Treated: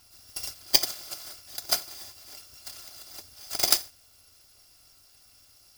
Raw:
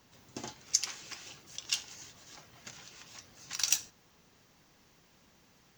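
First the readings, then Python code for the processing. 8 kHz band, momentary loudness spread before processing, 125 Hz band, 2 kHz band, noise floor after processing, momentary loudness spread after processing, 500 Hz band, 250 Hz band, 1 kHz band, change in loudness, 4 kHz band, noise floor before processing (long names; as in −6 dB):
+2.0 dB, 21 LU, +3.5 dB, +4.0 dB, −59 dBFS, 20 LU, +12.5 dB, +4.0 dB, +10.5 dB, +7.0 dB, +8.5 dB, −65 dBFS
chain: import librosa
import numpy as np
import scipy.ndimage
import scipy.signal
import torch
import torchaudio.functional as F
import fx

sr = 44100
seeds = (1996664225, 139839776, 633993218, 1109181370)

y = fx.bit_reversed(x, sr, seeds[0], block=256)
y = fx.graphic_eq_31(y, sr, hz=(100, 160, 2000, 5000), db=(6, 6, -4, 11))
y = y * 10.0 ** (5.0 / 20.0)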